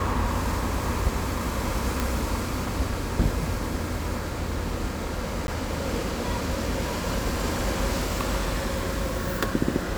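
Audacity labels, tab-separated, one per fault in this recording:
2.000000	2.000000	click
5.470000	5.480000	drop-out 11 ms

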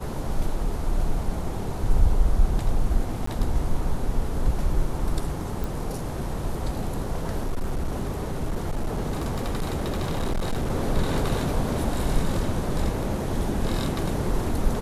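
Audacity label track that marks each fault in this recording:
3.260000	3.270000	drop-out
5.640000	5.640000	click
7.420000	10.710000	clipping −21.5 dBFS

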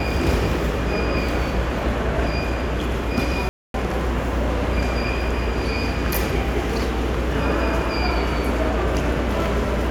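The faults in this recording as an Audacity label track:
3.490000	3.740000	drop-out 252 ms

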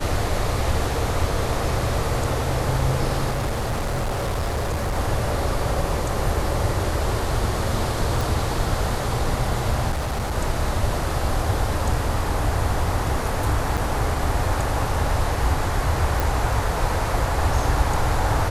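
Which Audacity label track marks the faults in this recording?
3.300000	4.970000	clipping −20.5 dBFS
8.210000	8.210000	click
9.910000	10.380000	clipping −21 dBFS
13.770000	13.770000	drop-out 4.8 ms
16.200000	16.200000	click

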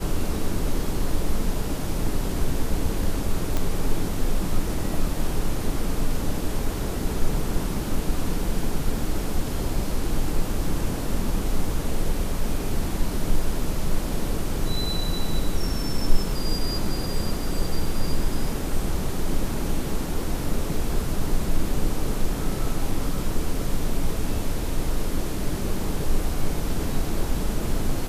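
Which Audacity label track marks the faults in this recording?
3.570000	3.570000	click

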